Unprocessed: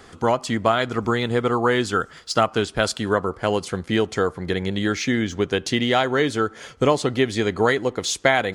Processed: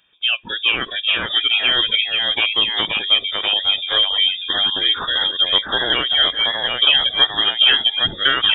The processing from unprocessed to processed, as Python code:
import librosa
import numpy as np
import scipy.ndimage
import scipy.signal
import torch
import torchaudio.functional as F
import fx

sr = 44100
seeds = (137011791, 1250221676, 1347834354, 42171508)

y = fx.fixed_phaser(x, sr, hz=1000.0, stages=8)
y = fx.noise_reduce_blind(y, sr, reduce_db=18)
y = fx.echo_pitch(y, sr, ms=387, semitones=-1, count=2, db_per_echo=-3.0)
y = fx.freq_invert(y, sr, carrier_hz=3600)
y = y * 10.0 ** (5.5 / 20.0)